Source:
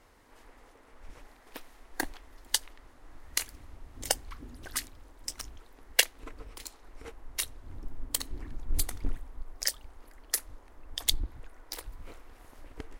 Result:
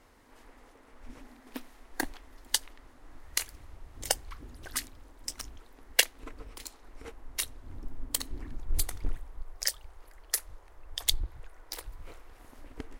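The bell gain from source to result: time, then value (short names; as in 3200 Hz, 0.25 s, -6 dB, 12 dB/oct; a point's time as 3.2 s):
bell 250 Hz 0.45 oct
+4 dB
from 1.06 s +14.5 dB
from 1.67 s +3.5 dB
from 3.22 s -5.5 dB
from 4.71 s +2.5 dB
from 8.6 s -7 dB
from 9.45 s -14.5 dB
from 11.57 s -6.5 dB
from 12.4 s +5 dB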